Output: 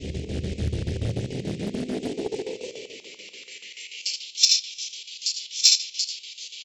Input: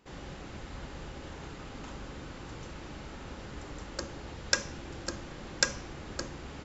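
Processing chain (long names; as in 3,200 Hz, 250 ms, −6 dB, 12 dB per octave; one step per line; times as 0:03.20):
reversed piece by piece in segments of 230 ms
inverse Chebyshev band-stop filter 710–1,600 Hz, stop band 40 dB
mains-hum notches 50/100/150 Hz
on a send: ambience of single reflections 16 ms −7 dB, 80 ms −5.5 dB
on the sum: rectangular room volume 41 cubic metres, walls mixed, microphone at 1.6 metres
square-wave tremolo 6.9 Hz, depth 65%, duty 70%
high-pass filter sweep 83 Hz → 3,600 Hz, 0:00.99–0:04.28
in parallel at −8 dB: soft clipping −13 dBFS, distortion −13 dB
on the sum: highs frequency-modulated by the lows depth 0.97 ms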